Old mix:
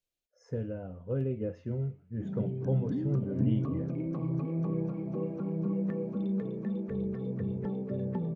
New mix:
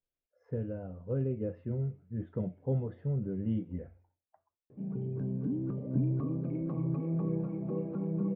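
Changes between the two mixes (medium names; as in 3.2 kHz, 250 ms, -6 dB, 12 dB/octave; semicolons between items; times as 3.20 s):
background: entry +2.55 s; master: add distance through air 460 m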